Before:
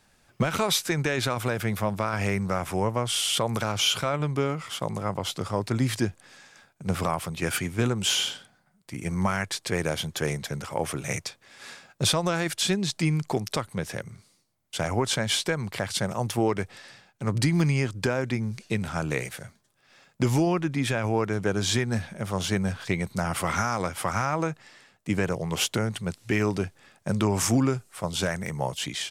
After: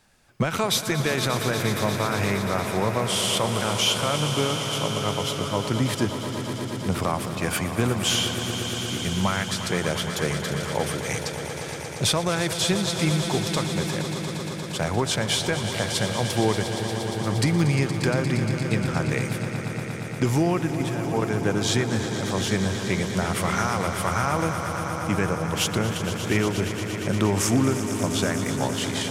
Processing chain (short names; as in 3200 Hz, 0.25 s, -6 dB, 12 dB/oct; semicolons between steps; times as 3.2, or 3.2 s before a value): 20.71–21.22 level quantiser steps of 12 dB; swelling echo 0.117 s, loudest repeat 5, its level -12 dB; warbling echo 0.312 s, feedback 60%, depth 127 cents, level -18 dB; gain +1 dB